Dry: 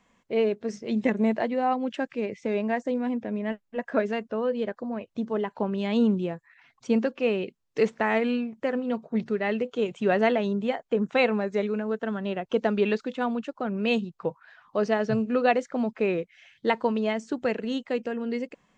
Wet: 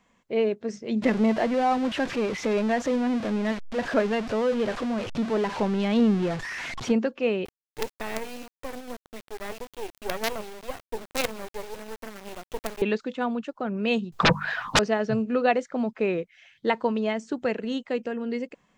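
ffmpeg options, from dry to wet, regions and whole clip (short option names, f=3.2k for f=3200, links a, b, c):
-filter_complex "[0:a]asettb=1/sr,asplit=3[a][b][c];[a]atrim=end=1.024[d];[b]atrim=start=1.02:end=6.92,asetpts=PTS-STARTPTS,afade=t=in:d=0.004:c=qsin,afade=t=out:st=5.896:d=0.004:c=qsin,aeval=exprs='val(0)+0.5*0.0398*sgn(val(0))':c=same,lowpass=5.3k[e];[c]atrim=start=6.916[f];[d][e]acrossfade=d=0.004:c1=hsin:c2=qsin[g];[g][f]acrossfade=d=0.004:c1=qsin:c2=hsin,asettb=1/sr,asplit=3[h][i][j];[h]atrim=end=7.454[k];[i]atrim=start=7.45:end=12.82,asetpts=PTS-STARTPTS,afade=t=in:d=0.004:c=qsin,afade=t=out:st=5.366:d=0.004:c=qsin,highpass=f=270:w=0.5412,highpass=f=270:w=1.3066,flanger=delay=0.5:depth=6.4:regen=76:speed=1.8:shape=sinusoidal,acrusher=bits=4:dc=4:mix=0:aa=0.000001[l];[j]atrim=start=12.816[m];[k][l]acrossfade=d=0.004:c1=hsin:c2=qsin[n];[n][m]acrossfade=d=0.004:c1=qsin:c2=hsin,asettb=1/sr,asplit=3[o][p][q];[o]atrim=end=14.124[r];[p]atrim=start=14.12:end=14.79,asetpts=PTS-STARTPTS,afade=t=in:d=0.004:c=qsin,afade=t=out:st=0.666:d=0.004:c=qsin,lowshelf=f=220:g=6.5,aeval=exprs='0.211*sin(PI/2*8.91*val(0)/0.211)':c=same,bandreject=f=50:t=h:w=6,bandreject=f=100:t=h:w=6,bandreject=f=150:t=h:w=6,bandreject=f=200:t=h:w=6,bandreject=f=250:t=h:w=6[s];[q]atrim=start=14.786[t];[r][s]acrossfade=d=0.004:c1=hsin:c2=qsin[u];[u][t]acrossfade=d=0.004:c1=qsin:c2=hsin"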